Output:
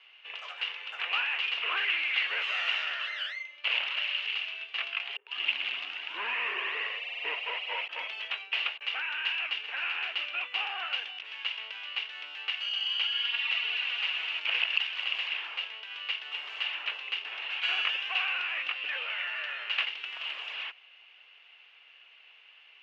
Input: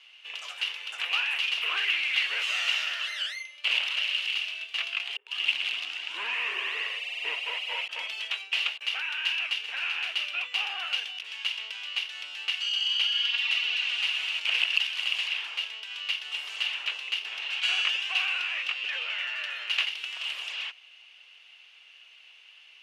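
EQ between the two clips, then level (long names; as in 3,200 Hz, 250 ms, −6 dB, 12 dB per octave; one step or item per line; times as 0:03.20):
low-pass filter 2,300 Hz 12 dB per octave
+2.0 dB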